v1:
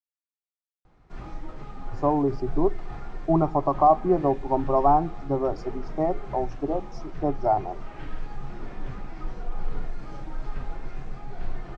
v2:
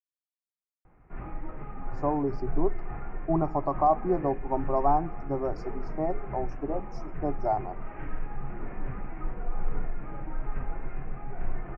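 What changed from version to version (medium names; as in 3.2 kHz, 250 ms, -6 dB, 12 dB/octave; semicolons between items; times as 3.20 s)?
speech -5.0 dB; background: add steep low-pass 2.5 kHz 48 dB/octave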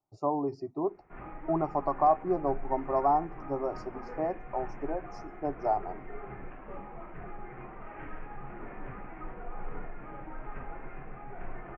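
speech: entry -1.80 s; master: add bass shelf 190 Hz -11.5 dB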